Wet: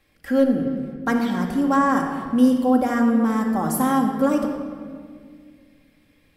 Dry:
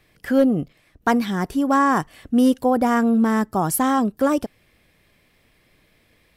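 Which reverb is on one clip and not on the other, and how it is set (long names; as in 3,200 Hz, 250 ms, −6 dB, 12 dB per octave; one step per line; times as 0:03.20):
rectangular room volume 3,400 cubic metres, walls mixed, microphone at 2.2 metres
level −5.5 dB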